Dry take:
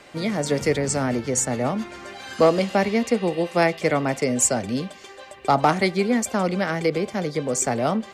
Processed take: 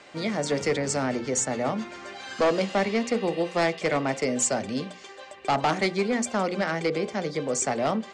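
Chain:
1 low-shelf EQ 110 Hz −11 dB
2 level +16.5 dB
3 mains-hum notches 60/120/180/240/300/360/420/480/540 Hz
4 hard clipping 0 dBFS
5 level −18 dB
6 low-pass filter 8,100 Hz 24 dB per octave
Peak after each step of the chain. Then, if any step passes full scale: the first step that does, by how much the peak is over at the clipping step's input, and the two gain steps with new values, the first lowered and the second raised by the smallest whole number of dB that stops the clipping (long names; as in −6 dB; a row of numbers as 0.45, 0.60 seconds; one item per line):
−7.0, +9.5, +10.0, 0.0, −18.0, −16.5 dBFS
step 2, 10.0 dB
step 2 +6.5 dB, step 5 −8 dB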